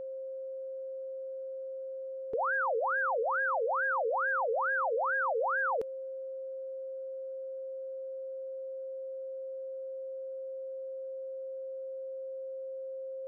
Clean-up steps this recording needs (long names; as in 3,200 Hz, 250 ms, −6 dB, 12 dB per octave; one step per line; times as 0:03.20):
notch filter 530 Hz, Q 30
noise reduction from a noise print 30 dB